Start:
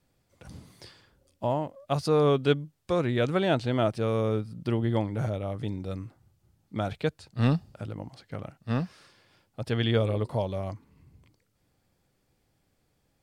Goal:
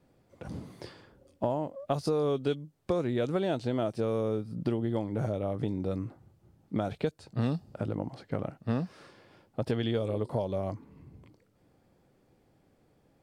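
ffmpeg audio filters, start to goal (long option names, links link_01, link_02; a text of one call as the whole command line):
ffmpeg -i in.wav -filter_complex "[0:a]equalizer=frequency=370:width=0.33:gain=10.5,acrossover=split=3900[link_01][link_02];[link_01]acompressor=threshold=-26dB:ratio=6[link_03];[link_02]flanger=delay=18:depth=6.7:speed=0.83[link_04];[link_03][link_04]amix=inputs=2:normalize=0,volume=-1dB" out.wav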